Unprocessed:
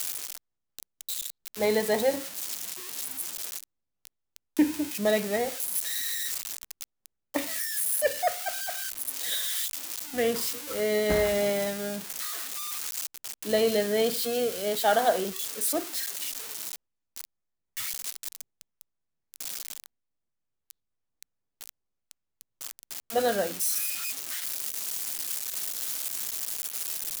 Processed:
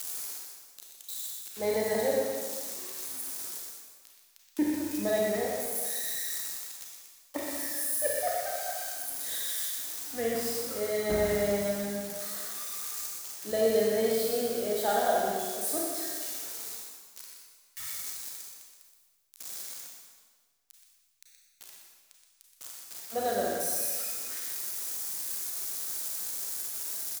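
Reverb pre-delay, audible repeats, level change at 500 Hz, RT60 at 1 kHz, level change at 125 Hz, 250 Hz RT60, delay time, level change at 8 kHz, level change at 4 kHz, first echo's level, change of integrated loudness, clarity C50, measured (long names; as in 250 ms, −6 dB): 30 ms, 1, −2.0 dB, 1.6 s, −1.5 dB, 1.5 s, 123 ms, −2.0 dB, −5.5 dB, −6.5 dB, −2.5 dB, −1.5 dB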